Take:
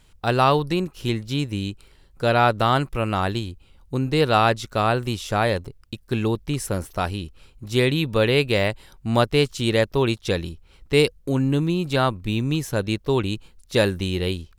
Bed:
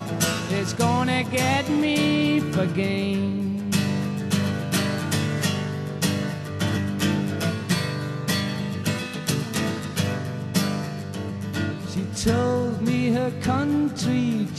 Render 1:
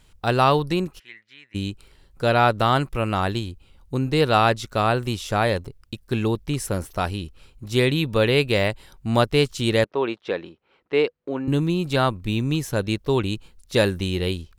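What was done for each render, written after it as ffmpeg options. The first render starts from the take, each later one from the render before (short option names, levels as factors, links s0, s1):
-filter_complex "[0:a]asplit=3[s0][s1][s2];[s0]afade=t=out:st=0.98:d=0.02[s3];[s1]bandpass=f=1900:t=q:w=6.6,afade=t=in:st=0.98:d=0.02,afade=t=out:st=1.54:d=0.02[s4];[s2]afade=t=in:st=1.54:d=0.02[s5];[s3][s4][s5]amix=inputs=3:normalize=0,asettb=1/sr,asplit=3[s6][s7][s8];[s6]atrim=end=9.844[s9];[s7]atrim=start=9.84:end=11.48,asetpts=PTS-STARTPTS,afade=t=in:d=0.004:c=qsin,afade=t=out:st=1.636:d=0.004:c=qsin,highpass=340,lowpass=2200[s10];[s8]atrim=start=11.476[s11];[s9][s10]acrossfade=d=0.004:c1=hsin:c2=qsin[s12];[s12][s11]acrossfade=d=0.004:c1=qsin:c2=hsin"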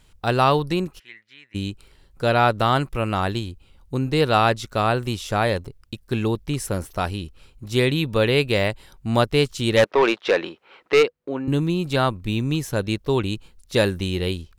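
-filter_complex "[0:a]asplit=3[s0][s1][s2];[s0]afade=t=out:st=9.76:d=0.02[s3];[s1]asplit=2[s4][s5];[s5]highpass=f=720:p=1,volume=10,asoftclip=type=tanh:threshold=0.473[s6];[s4][s6]amix=inputs=2:normalize=0,lowpass=f=5000:p=1,volume=0.501,afade=t=in:st=9.76:d=0.02,afade=t=out:st=11.02:d=0.02[s7];[s2]afade=t=in:st=11.02:d=0.02[s8];[s3][s7][s8]amix=inputs=3:normalize=0"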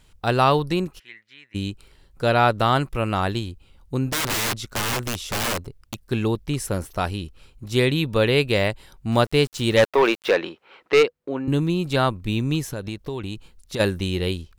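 -filter_complex "[0:a]asettb=1/sr,asplit=3[s0][s1][s2];[s0]atrim=end=4.114[s3];[s1]atrim=start=4.11:end=6.05,asetpts=PTS-STARTPTS,afade=t=in:d=0.004:c=qsin,afade=t=out:st=1.936:d=0.004:c=qsin,aeval=exprs='(mod(8.91*val(0)+1,2)-1)/8.91':c=same[s4];[s2]atrim=start=6.046[s5];[s3][s4]acrossfade=d=0.004:c1=hsin:c2=qsin[s6];[s6][s5]acrossfade=d=0.004:c1=qsin:c2=hsin,asettb=1/sr,asplit=3[s7][s8][s9];[s7]atrim=end=9.124[s10];[s8]atrim=start=9.12:end=10.34,asetpts=PTS-STARTPTS,afade=t=in:d=0.004:c=qsin,afade=t=out:st=1.216:d=0.004:c=qsin,aeval=exprs='val(0)*gte(abs(val(0)),0.0133)':c=same[s11];[s9]atrim=start=10.336[s12];[s10][s11]acrossfade=d=0.004:c1=hsin:c2=qsin[s13];[s13][s12]acrossfade=d=0.004:c1=qsin:c2=hsin,asplit=3[s14][s15][s16];[s14]afade=t=out:st=12.64:d=0.02[s17];[s15]acompressor=threshold=0.0562:ratio=6:attack=3.2:release=140:knee=1:detection=peak,afade=t=in:st=12.64:d=0.02,afade=t=out:st=13.79:d=0.02[s18];[s16]afade=t=in:st=13.79:d=0.02[s19];[s17][s18][s19]amix=inputs=3:normalize=0"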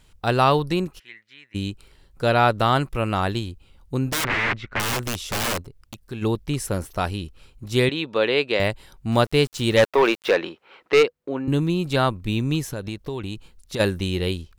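-filter_complex "[0:a]asettb=1/sr,asplit=3[s0][s1][s2];[s0]atrim=end=4.244[s3];[s1]atrim=start=4.24:end=4.8,asetpts=PTS-STARTPTS,afade=t=in:d=0.004:c=qsin,afade=t=out:st=0.556:d=0.004:c=qsin,lowpass=f=2100:t=q:w=2.6[s4];[s2]atrim=start=4.796[s5];[s3][s4]acrossfade=d=0.004:c1=hsin:c2=qsin[s6];[s6][s5]acrossfade=d=0.004:c1=qsin:c2=hsin,asplit=3[s7][s8][s9];[s7]afade=t=out:st=5.61:d=0.02[s10];[s8]acompressor=threshold=0.00708:ratio=1.5:attack=3.2:release=140:knee=1:detection=peak,afade=t=in:st=5.61:d=0.02,afade=t=out:st=6.21:d=0.02[s11];[s9]afade=t=in:st=6.21:d=0.02[s12];[s10][s11][s12]amix=inputs=3:normalize=0,asettb=1/sr,asplit=3[s13][s14][s15];[s13]atrim=end=7.894[s16];[s14]atrim=start=7.89:end=8.6,asetpts=PTS-STARTPTS,afade=t=in:d=0.004:c=qsin,afade=t=out:st=0.706:d=0.004:c=qsin,highpass=320,lowpass=4700[s17];[s15]atrim=start=8.596[s18];[s16][s17]acrossfade=d=0.004:c1=hsin:c2=qsin[s19];[s19][s18]acrossfade=d=0.004:c1=qsin:c2=hsin"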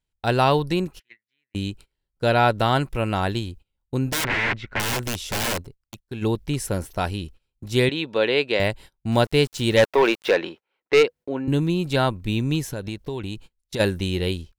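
-af "bandreject=f=1200:w=7.4,agate=range=0.0447:threshold=0.01:ratio=16:detection=peak"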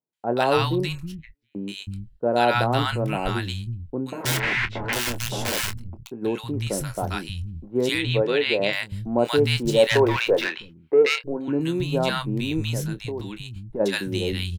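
-filter_complex "[0:a]asplit=2[s0][s1];[s1]adelay=25,volume=0.251[s2];[s0][s2]amix=inputs=2:normalize=0,acrossover=split=170|1000[s3][s4][s5];[s5]adelay=130[s6];[s3]adelay=320[s7];[s7][s4][s6]amix=inputs=3:normalize=0"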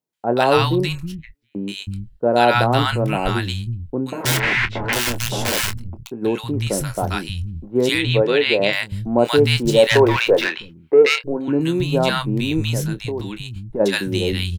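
-af "volume=1.78,alimiter=limit=0.794:level=0:latency=1"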